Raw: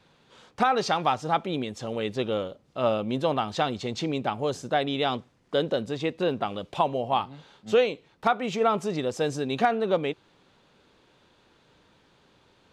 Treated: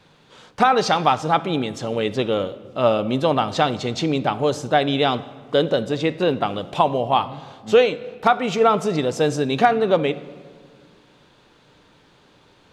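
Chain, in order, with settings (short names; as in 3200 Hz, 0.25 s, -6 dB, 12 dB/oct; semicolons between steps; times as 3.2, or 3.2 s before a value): shoebox room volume 2000 m³, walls mixed, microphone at 0.41 m; gain +6.5 dB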